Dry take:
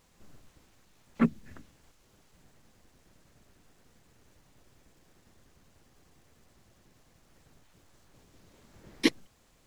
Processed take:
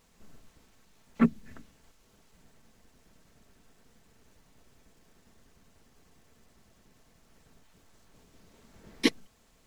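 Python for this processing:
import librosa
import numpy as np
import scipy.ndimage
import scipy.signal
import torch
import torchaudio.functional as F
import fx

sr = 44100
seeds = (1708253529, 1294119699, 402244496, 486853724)

y = x + 0.3 * np.pad(x, (int(4.5 * sr / 1000.0), 0))[:len(x)]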